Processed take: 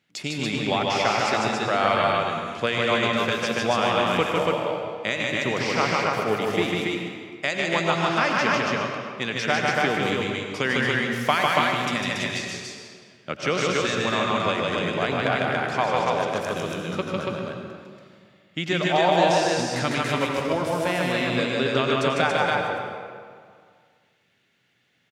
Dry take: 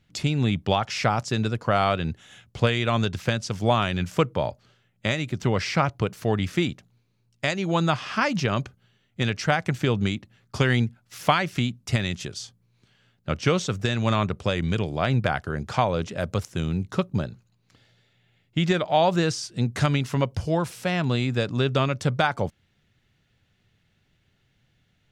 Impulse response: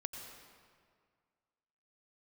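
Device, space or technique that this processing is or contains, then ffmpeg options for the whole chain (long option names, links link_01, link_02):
stadium PA: -filter_complex "[0:a]highpass=250,equalizer=frequency=2100:width_type=o:width=0.77:gain=3.5,aecho=1:1:151.6|282.8:0.794|0.794[link_01];[1:a]atrim=start_sample=2205[link_02];[link_01][link_02]afir=irnorm=-1:irlink=0,volume=1dB"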